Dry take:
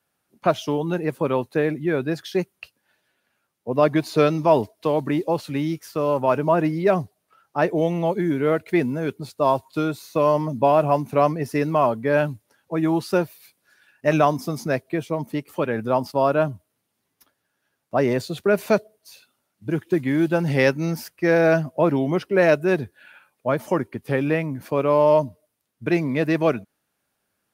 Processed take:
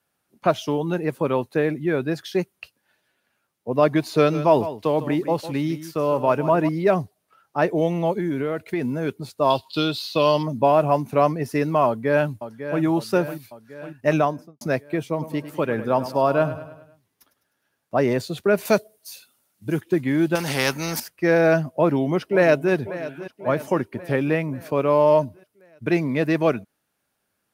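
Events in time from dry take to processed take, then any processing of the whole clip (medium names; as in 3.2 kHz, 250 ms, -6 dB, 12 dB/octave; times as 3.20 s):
4.16–6.69 s: delay 154 ms -13 dB
8.13–8.90 s: compression, threshold -20 dBFS
9.50–10.43 s: high-order bell 3.7 kHz +15.5 dB 1.1 oct
11.86–12.82 s: echo throw 550 ms, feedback 60%, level -10.5 dB
14.06–14.61 s: studio fade out
15.11–17.98 s: feedback delay 102 ms, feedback 51%, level -13 dB
18.65–19.81 s: treble shelf 4.9 kHz +11 dB
20.35–21.00 s: spectrum-flattening compressor 2:1
21.67–22.73 s: echo throw 540 ms, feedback 60%, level -14.5 dB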